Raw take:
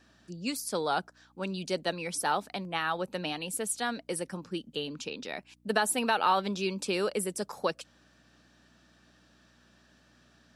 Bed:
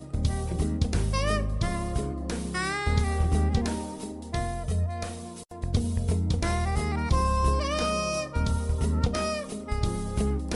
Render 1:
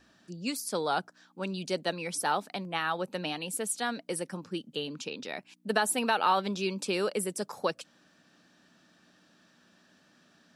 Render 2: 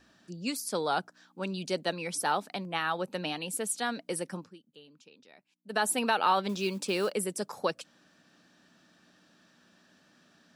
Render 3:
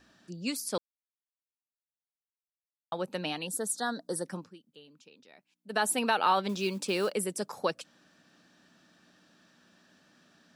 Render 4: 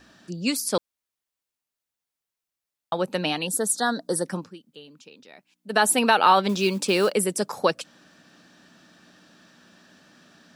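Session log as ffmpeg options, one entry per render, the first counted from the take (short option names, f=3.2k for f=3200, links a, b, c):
-af "bandreject=f=60:t=h:w=4,bandreject=f=120:t=h:w=4"
-filter_complex "[0:a]asettb=1/sr,asplit=3[a][b][c];[a]atrim=end=6.494[d];[b]atrim=start=6.49:end=7.12,asetpts=PTS-STARTPTS,afade=t=in:d=0.004:c=qsin,afade=t=out:st=0.626:d=0.004:c=qsin,acrusher=bits=6:mode=log:mix=0:aa=0.000001[e];[c]atrim=start=7.116[f];[d][e]acrossfade=d=0.004:c1=hsin:c2=qsin[g];[g][f]acrossfade=d=0.004:c1=qsin:c2=hsin,asplit=3[h][i][j];[h]atrim=end=4.59,asetpts=PTS-STARTPTS,afade=t=out:st=4.39:d=0.2:c=qua:silence=0.112202[k];[i]atrim=start=4.59:end=5.61,asetpts=PTS-STARTPTS,volume=-19dB[l];[j]atrim=start=5.61,asetpts=PTS-STARTPTS,afade=t=in:d=0.2:c=qua:silence=0.112202[m];[k][l][m]concat=n=3:v=0:a=1"
-filter_complex "[0:a]asettb=1/sr,asplit=3[a][b][c];[a]atrim=end=3.474[d];[b]atrim=start=3.47:end=4.26,asetpts=PTS-STARTPTS,afade=t=in:d=0.004:c=qsin,afade=t=out:st=0.786:d=0.004:c=qsin,asuperstop=centerf=2500:order=8:qfactor=1.5[e];[c]atrim=start=4.256[f];[d][e]acrossfade=d=0.004:c1=hsin:c2=qsin[g];[g][f]acrossfade=d=0.004:c1=qsin:c2=hsin,asplit=3[h][i][j];[h]atrim=end=0.78,asetpts=PTS-STARTPTS,afade=t=out:st=0.776:d=0.004:c=hsin[k];[i]atrim=start=0.78:end=2.92,asetpts=PTS-STARTPTS,volume=0[l];[j]atrim=start=2.92,asetpts=PTS-STARTPTS,afade=t=in:d=0.004:c=hsin[m];[k][l][m]concat=n=3:v=0:a=1"
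-af "volume=8.5dB"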